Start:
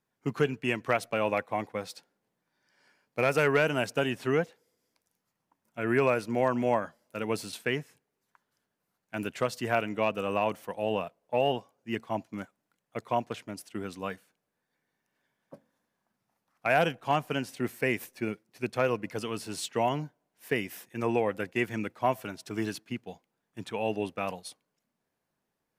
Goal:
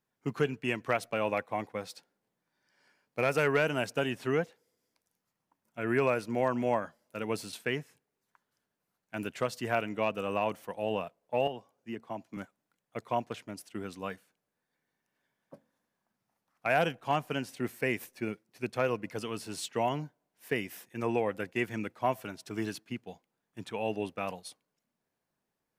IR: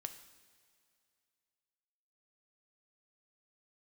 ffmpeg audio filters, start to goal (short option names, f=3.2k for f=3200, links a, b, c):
-filter_complex "[0:a]asettb=1/sr,asplit=3[a][b][c];[a]atrim=end=11.474[d];[b]atrim=start=11.47:end=12.37,asetpts=PTS-STARTPTS,afade=t=in:d=0.004:c=qsin,afade=t=out:st=0.896:d=0.004:c=qsin,acrossover=split=140|1200[e][f][g];[e]acompressor=threshold=-55dB:ratio=4[h];[f]acompressor=threshold=-33dB:ratio=4[i];[g]acompressor=threshold=-48dB:ratio=4[j];[h][i][j]amix=inputs=3:normalize=0[k];[c]atrim=start=12.366[l];[d][k]acrossfade=d=0.004:c1=hsin:c2=qsin[m];[m][l]acrossfade=d=0.004:c1=qsin:c2=hsin,volume=-2.5dB"